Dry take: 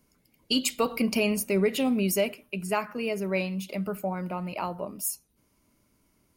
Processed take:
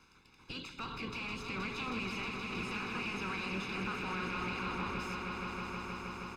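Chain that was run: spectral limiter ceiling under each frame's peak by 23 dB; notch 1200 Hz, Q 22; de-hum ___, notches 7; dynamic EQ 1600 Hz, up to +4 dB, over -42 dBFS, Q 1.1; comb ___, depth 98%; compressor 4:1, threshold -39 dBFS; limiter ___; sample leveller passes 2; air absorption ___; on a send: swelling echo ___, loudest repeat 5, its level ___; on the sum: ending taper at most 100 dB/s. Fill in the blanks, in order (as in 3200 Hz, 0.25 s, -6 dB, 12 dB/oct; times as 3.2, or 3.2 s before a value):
142.4 Hz, 0.8 ms, -33.5 dBFS, 160 m, 0.158 s, -8 dB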